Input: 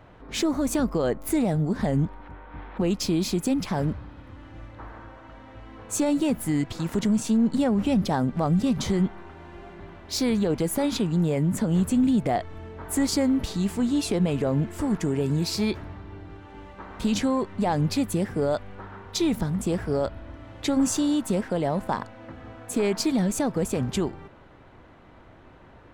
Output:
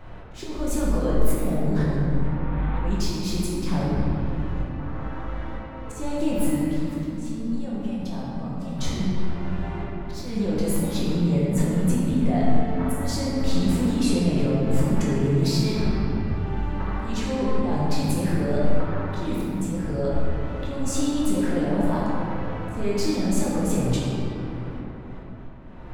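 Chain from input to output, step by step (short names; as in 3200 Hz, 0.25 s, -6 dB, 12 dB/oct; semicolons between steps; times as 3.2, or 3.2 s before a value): low shelf 62 Hz +10.5 dB; auto swell 0.458 s; limiter -25.5 dBFS, peak gain reduction 13 dB; 6.6–8.79 resonator 230 Hz, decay 0.61 s, harmonics odd, mix 70%; reverb RT60 3.0 s, pre-delay 5 ms, DRR -7.5 dB; gain +1 dB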